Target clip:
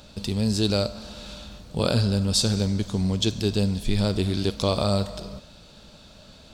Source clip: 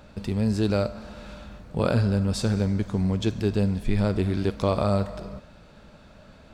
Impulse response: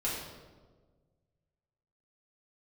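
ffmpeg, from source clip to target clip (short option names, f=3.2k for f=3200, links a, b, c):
-af "highshelf=f=2.7k:t=q:w=1.5:g=9.5"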